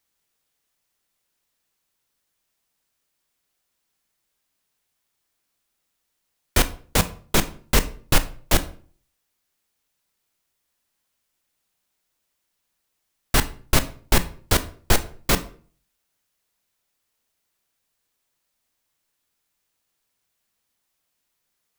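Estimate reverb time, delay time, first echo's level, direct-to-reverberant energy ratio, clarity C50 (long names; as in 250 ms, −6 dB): 0.45 s, no echo audible, no echo audible, 11.0 dB, 16.0 dB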